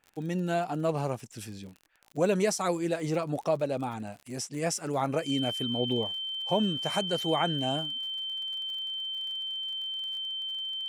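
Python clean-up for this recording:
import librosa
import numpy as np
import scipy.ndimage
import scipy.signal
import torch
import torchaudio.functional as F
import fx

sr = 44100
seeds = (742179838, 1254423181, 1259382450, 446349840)

y = fx.fix_declick_ar(x, sr, threshold=6.5)
y = fx.notch(y, sr, hz=3100.0, q=30.0)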